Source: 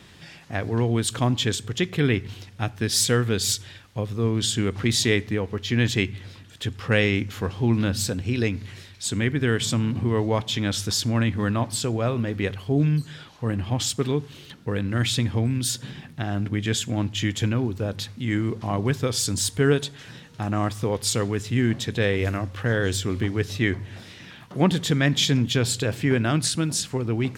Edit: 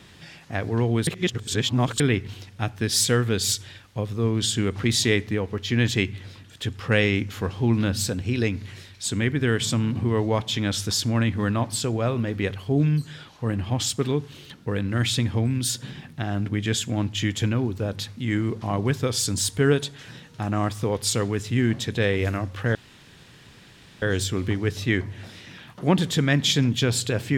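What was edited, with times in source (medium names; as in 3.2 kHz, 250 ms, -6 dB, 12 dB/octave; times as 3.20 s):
1.07–2.00 s: reverse
22.75 s: insert room tone 1.27 s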